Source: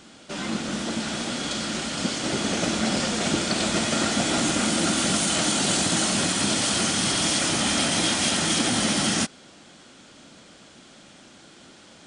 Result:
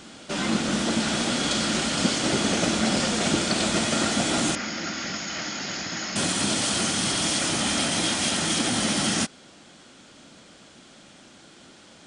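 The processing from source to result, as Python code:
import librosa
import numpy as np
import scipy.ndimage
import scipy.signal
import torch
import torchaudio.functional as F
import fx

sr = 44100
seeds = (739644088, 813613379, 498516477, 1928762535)

y = fx.rider(x, sr, range_db=4, speed_s=0.5)
y = fx.cheby_ripple(y, sr, hz=6900.0, ripple_db=9, at=(4.55, 6.16))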